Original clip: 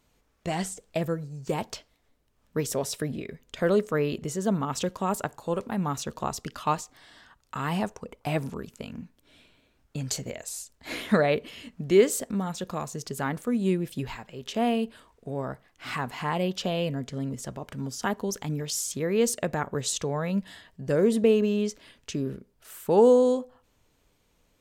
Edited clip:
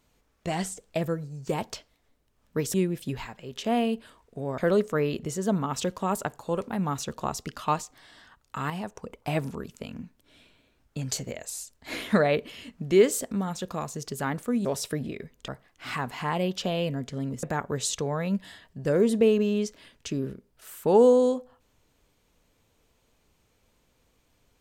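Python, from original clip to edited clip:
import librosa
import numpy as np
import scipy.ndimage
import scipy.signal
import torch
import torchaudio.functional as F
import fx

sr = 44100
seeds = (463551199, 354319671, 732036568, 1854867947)

y = fx.edit(x, sr, fx.swap(start_s=2.74, length_s=0.83, other_s=13.64, other_length_s=1.84),
    fx.clip_gain(start_s=7.69, length_s=0.25, db=-6.5),
    fx.cut(start_s=17.43, length_s=2.03), tone=tone)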